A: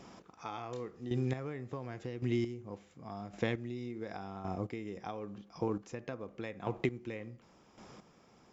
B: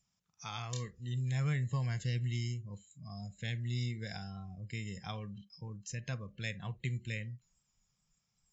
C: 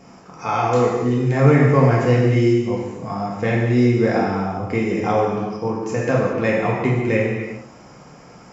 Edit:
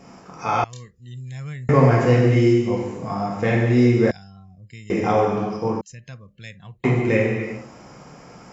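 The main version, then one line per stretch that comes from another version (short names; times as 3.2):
C
0.64–1.69 from B
4.11–4.9 from B
5.81–6.84 from B
not used: A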